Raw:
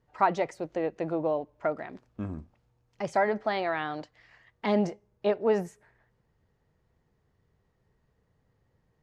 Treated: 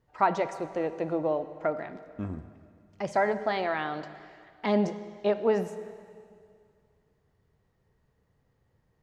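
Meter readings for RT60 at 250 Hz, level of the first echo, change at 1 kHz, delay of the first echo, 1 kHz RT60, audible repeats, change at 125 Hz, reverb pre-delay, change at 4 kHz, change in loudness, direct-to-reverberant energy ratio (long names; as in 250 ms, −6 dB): 2.3 s, no echo audible, 0.0 dB, no echo audible, 2.3 s, no echo audible, +0.5 dB, 7 ms, +0.5 dB, 0.0 dB, 11.5 dB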